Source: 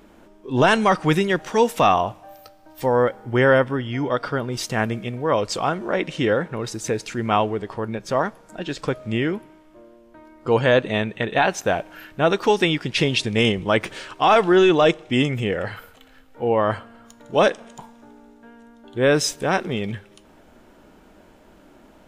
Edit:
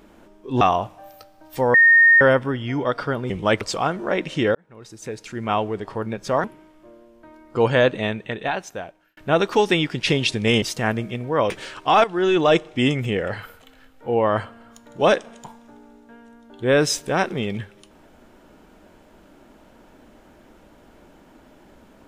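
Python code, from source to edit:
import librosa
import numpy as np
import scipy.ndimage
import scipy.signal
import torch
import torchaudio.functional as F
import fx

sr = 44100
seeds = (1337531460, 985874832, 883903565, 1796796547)

y = fx.edit(x, sr, fx.cut(start_s=0.61, length_s=1.25),
    fx.bleep(start_s=2.99, length_s=0.47, hz=1840.0, db=-9.0),
    fx.swap(start_s=4.55, length_s=0.88, other_s=13.53, other_length_s=0.31),
    fx.fade_in_span(start_s=6.37, length_s=1.37),
    fx.cut(start_s=8.26, length_s=1.09),
    fx.fade_out_span(start_s=10.71, length_s=1.37),
    fx.fade_in_from(start_s=14.38, length_s=0.47, floor_db=-13.5), tone=tone)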